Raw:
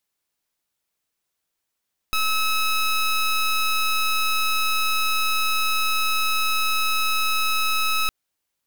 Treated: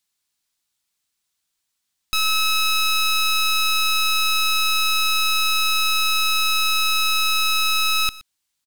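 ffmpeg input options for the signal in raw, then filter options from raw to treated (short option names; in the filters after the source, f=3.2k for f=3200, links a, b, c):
-f lavfi -i "aevalsrc='0.0891*(2*lt(mod(1290*t,1),0.17)-1)':d=5.96:s=44100"
-af "equalizer=f=500:t=o:w=1:g=-8,equalizer=f=4k:t=o:w=1:g=5,equalizer=f=8k:t=o:w=1:g=5,aecho=1:1:121:0.106"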